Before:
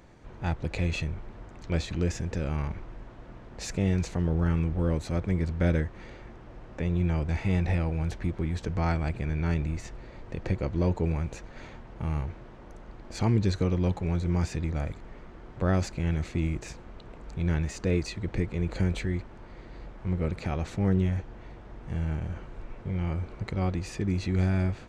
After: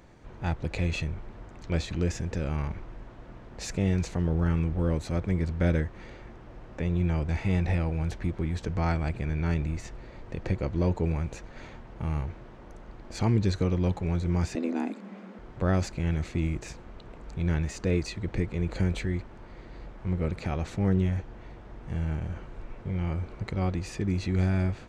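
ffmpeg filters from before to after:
ffmpeg -i in.wav -filter_complex "[0:a]asettb=1/sr,asplit=3[link_01][link_02][link_03];[link_01]atrim=end=14.554[link_04];[link_02]atrim=start=14.55:end=15.39,asetpts=PTS-STARTPTS,afade=type=in:duration=0.004:curve=qsin,afade=type=out:start_time=0.836:duration=0.004:curve=qsin,afreqshift=170[link_05];[link_03]atrim=start=15.386[link_06];[link_04][link_05]acrossfade=duration=0.004:curve1=hsin:curve2=qsin[link_07];[link_07][link_06]acrossfade=duration=0.004:curve1=qsin:curve2=hsin" out.wav

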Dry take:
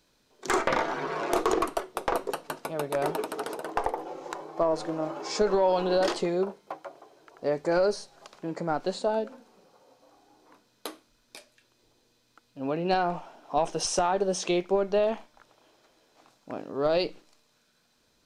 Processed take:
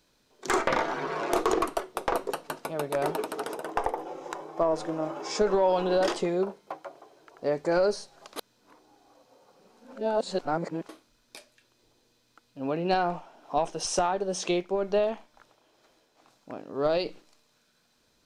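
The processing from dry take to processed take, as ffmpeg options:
ffmpeg -i in.wav -filter_complex "[0:a]asettb=1/sr,asplit=3[link_01][link_02][link_03];[link_01]atrim=end=3.444[link_04];[link_02]atrim=start=3.44:end=6.4,asetpts=PTS-STARTPTS,afade=type=in:duration=0.004:curve=qsin,afade=type=out:start_time=2.956:duration=0.004:curve=qsin,bandreject=frequency=4300:width=9.4[link_05];[link_03]atrim=start=6.396[link_06];[link_04][link_05]acrossfade=duration=0.004:curve1=hsin:curve2=qsin[link_07];[link_07][link_06]acrossfade=duration=0.004:curve1=qsin:curve2=hsin,asettb=1/sr,asplit=3[link_08][link_09][link_10];[link_08]atrim=end=13.044[link_11];[link_09]atrim=start=13.04:end=17.06,asetpts=PTS-STARTPTS,afade=type=in:duration=0.004:curve=qsin,afade=type=out:start_time=4.016:duration=0.004:curve=qsin,tremolo=f=2.1:d=0.37[link_12];[link_10]atrim=start=17.056[link_13];[link_11][link_12]acrossfade=duration=0.004:curve1=hsin:curve2=qsin[link_14];[link_14][link_13]acrossfade=duration=0.004:curve1=qsin:curve2=hsin,asplit=3[link_15][link_16][link_17];[link_15]atrim=end=8.362[link_18];[link_16]atrim=start=8.358:end=10.892,asetpts=PTS-STARTPTS,areverse[link_19];[link_17]atrim=start=10.888[link_20];[link_18][link_19]acrossfade=duration=0.004:curve1=hsin:curve2=hsin[link_21];[link_21][link_20]acrossfade=duration=0.004:curve1=hsin:curve2=hsin" out.wav

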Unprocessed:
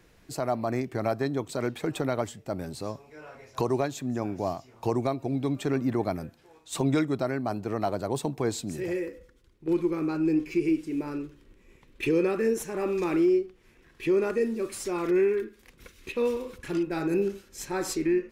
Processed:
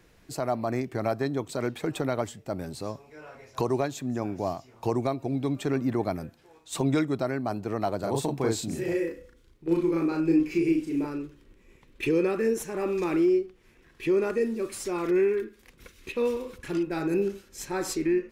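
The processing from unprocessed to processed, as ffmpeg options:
ffmpeg -i in.wav -filter_complex "[0:a]asettb=1/sr,asplit=3[link_01][link_02][link_03];[link_01]atrim=end=7.994[link_04];[link_02]atrim=start=7.99:end=11.07,asetpts=PTS-STARTPTS,afade=type=in:duration=0.004:curve=qsin,afade=type=out:start_time=3.076:duration=0.004:curve=qsin,asplit=2[link_05][link_06];[link_06]adelay=36,volume=-2dB[link_07];[link_05][link_07]amix=inputs=2:normalize=0,atrim=end_sample=135828[link_08];[link_03]atrim=start=11.066[link_09];[link_04][link_08]acrossfade=duration=0.004:curve1=hsin:curve2=qsin[link_10];[link_10][link_09]acrossfade=duration=0.004:curve1=qsin:curve2=hsin" out.wav

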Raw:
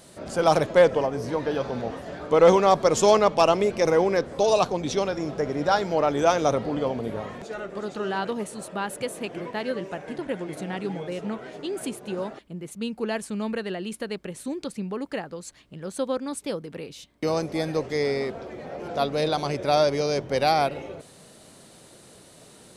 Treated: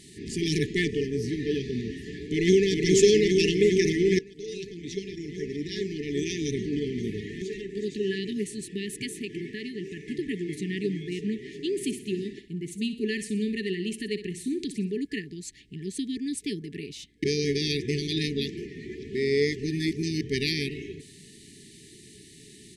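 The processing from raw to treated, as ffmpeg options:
ffmpeg -i in.wav -filter_complex "[0:a]asplit=2[link_01][link_02];[link_02]afade=type=in:start_time=2.18:duration=0.01,afade=type=out:start_time=2.69:duration=0.01,aecho=0:1:410|820|1230|1640|2050|2460|2870|3280|3690|4100|4510|4920:0.749894|0.63741|0.541799|0.460529|0.391449|0.332732|0.282822|0.240399|0.204339|0.173688|0.147635|0.12549[link_03];[link_01][link_03]amix=inputs=2:normalize=0,asettb=1/sr,asplit=3[link_04][link_05][link_06];[link_04]atrim=end=9.134[link_07];[link_05]atrim=start=9.13:end=9.97,asetpts=PTS-STARTPTS,afade=type=in:duration=0.004:curve=qsin,afade=type=out:start_time=0.836:duration=0.004:curve=qsin,acompressor=threshold=-30dB:ratio=4:attack=3.2:release=140:knee=1:detection=peak[link_08];[link_06]atrim=start=9.966[link_09];[link_07][link_08]acrossfade=duration=0.004:curve1=hsin:curve2=qsin[link_10];[link_10][link_09]acrossfade=duration=0.004:curve1=qsin:curve2=hsin,asplit=3[link_11][link_12][link_13];[link_11]afade=type=out:start_time=11.75:duration=0.02[link_14];[link_12]aecho=1:1:62|124|186|248:0.251|0.1|0.0402|0.0161,afade=type=in:start_time=11.75:duration=0.02,afade=type=out:start_time=14.99:duration=0.02[link_15];[link_13]afade=type=in:start_time=14.99:duration=0.02[link_16];[link_14][link_15][link_16]amix=inputs=3:normalize=0,asplit=4[link_17][link_18][link_19][link_20];[link_17]atrim=end=4.19,asetpts=PTS-STARTPTS,afade=type=out:start_time=4.186:duration=0.004:curve=hsin:silence=0.112202[link_21];[link_18]atrim=start=4.19:end=17.242,asetpts=PTS-STARTPTS,afade=type=in:duration=3.41:silence=0.112202[link_22];[link_19]atrim=start=17.238:end=20.212,asetpts=PTS-STARTPTS,areverse[link_23];[link_20]atrim=start=20.208[link_24];[link_21][link_22]concat=n=2:v=0:a=1[link_25];[link_25][link_23]acrossfade=duration=0.004:curve1=hsin:curve2=hsin[link_26];[link_26][link_24]acrossfade=duration=0.004:curve1=hsin:curve2=hsin,afftfilt=real='re*(1-between(b*sr/4096,450,1700))':imag='im*(1-between(b*sr/4096,450,1700))':win_size=4096:overlap=0.75,lowpass=10000,volume=2dB" out.wav

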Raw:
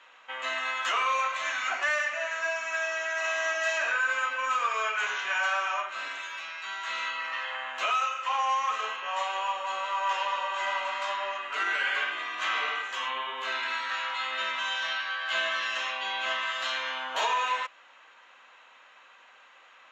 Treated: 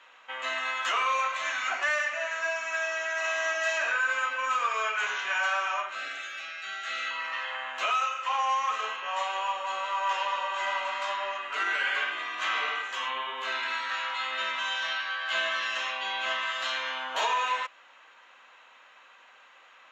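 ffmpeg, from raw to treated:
ffmpeg -i in.wav -filter_complex "[0:a]asettb=1/sr,asplit=3[link_01][link_02][link_03];[link_01]atrim=end=5.954[link_04];[link_02]atrim=start=5.95:end=7.11,asetpts=PTS-STARTPTS,afade=type=in:duration=0.004:curve=qsin,afade=type=out:start_time=1.156:duration=0.004:curve=qsin,asuperstop=centerf=1000:order=12:qfactor=3.6[link_05];[link_03]atrim=start=7.106[link_06];[link_04][link_05]acrossfade=duration=0.004:curve1=hsin:curve2=qsin[link_07];[link_07][link_06]acrossfade=duration=0.004:curve1=qsin:curve2=hsin" out.wav

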